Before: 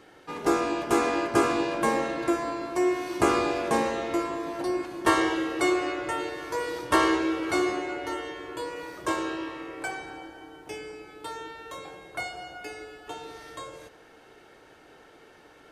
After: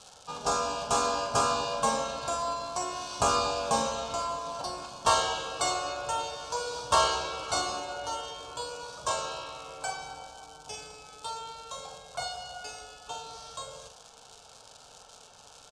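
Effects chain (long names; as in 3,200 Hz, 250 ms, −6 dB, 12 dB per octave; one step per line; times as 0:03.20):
bad sample-rate conversion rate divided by 2×, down filtered, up hold
surface crackle 210 per second −39 dBFS
low-pass filter 7,900 Hz 24 dB per octave
high-shelf EQ 2,300 Hz +10.5 dB
phaser with its sweep stopped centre 810 Hz, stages 4
double-tracking delay 45 ms −7.5 dB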